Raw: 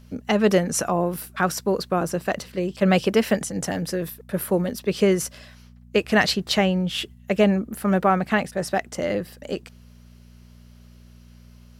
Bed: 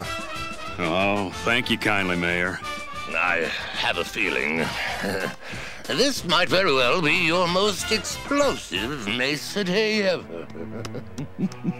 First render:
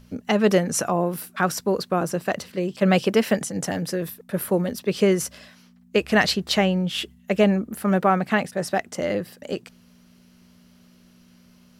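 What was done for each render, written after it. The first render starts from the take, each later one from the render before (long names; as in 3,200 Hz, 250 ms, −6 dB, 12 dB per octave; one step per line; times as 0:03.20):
hum removal 60 Hz, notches 2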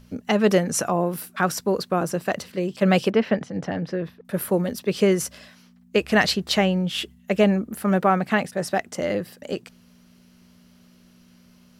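0:03.10–0:04.25: high-frequency loss of the air 250 metres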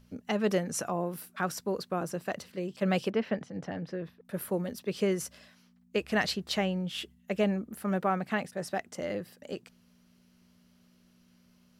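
level −9.5 dB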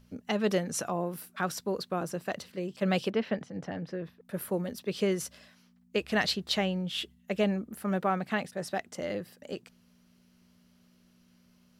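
dynamic equaliser 3,700 Hz, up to +5 dB, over −53 dBFS, Q 2.2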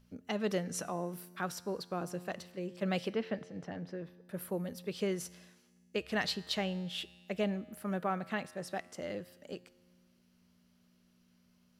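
tuned comb filter 89 Hz, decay 1.7 s, harmonics all, mix 50%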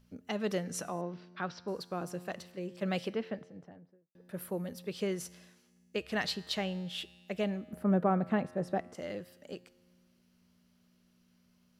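0:01.01–0:01.68: Butterworth low-pass 5,000 Hz
0:03.01–0:04.15: fade out and dull
0:07.73–0:08.95: tilt shelving filter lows +9.5 dB, about 1,400 Hz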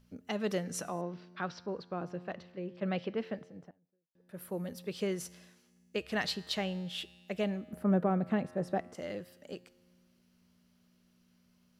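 0:01.66–0:03.18: high-frequency loss of the air 230 metres
0:03.71–0:04.63: fade in quadratic, from −19.5 dB
0:08.03–0:08.52: dynamic equaliser 1,100 Hz, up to −5 dB, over −39 dBFS, Q 0.93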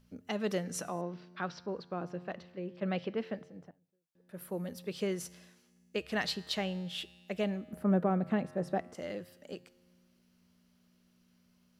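mains-hum notches 50/100/150 Hz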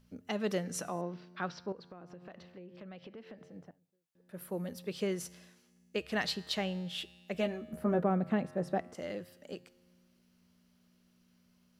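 0:01.72–0:03.48: downward compressor, threshold −46 dBFS
0:07.33–0:08.02: double-tracking delay 13 ms −4.5 dB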